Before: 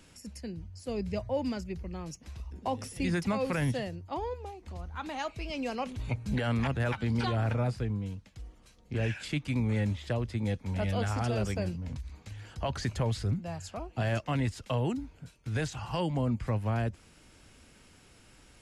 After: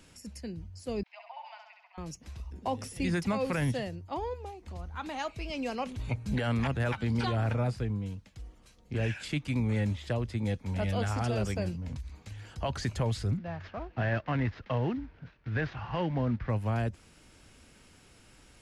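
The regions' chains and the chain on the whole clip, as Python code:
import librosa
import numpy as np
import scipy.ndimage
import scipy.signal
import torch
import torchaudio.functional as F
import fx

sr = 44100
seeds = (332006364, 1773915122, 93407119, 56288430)

y = fx.chain(x, sr, fx.cheby_ripple_highpass(hz=670.0, ripple_db=6),
    fx.air_absorb(metres=280.0),
    fx.room_flutter(wall_m=11.5, rt60_s=0.84), at=(1.03, 1.98))
y = fx.chain(y, sr, fx.cvsd(bps=32000),
    fx.lowpass(hz=2500.0, slope=12),
    fx.peak_eq(hz=1700.0, db=6.0, octaves=0.55), at=(13.37, 16.5))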